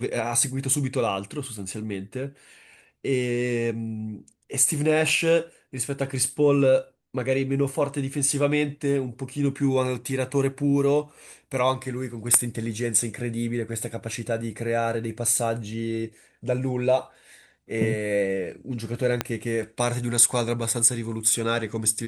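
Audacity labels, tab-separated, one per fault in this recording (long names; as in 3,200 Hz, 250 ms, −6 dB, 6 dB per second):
5.090000	5.090000	drop-out 3.7 ms
19.210000	19.210000	click −8 dBFS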